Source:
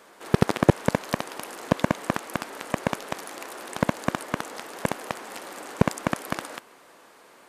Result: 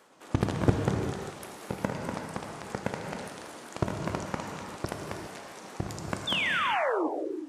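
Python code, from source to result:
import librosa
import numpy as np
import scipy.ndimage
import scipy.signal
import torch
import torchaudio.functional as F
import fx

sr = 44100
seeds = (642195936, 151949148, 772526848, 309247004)

y = fx.pitch_ramps(x, sr, semitones=-8.5, every_ms=203)
y = fx.spec_paint(y, sr, seeds[0], shape='fall', start_s=6.27, length_s=0.81, low_hz=280.0, high_hz=3700.0, level_db=-23.0)
y = fx.rev_gated(y, sr, seeds[1], gate_ms=430, shape='flat', drr_db=1.5)
y = F.gain(torch.from_numpy(y), -6.5).numpy()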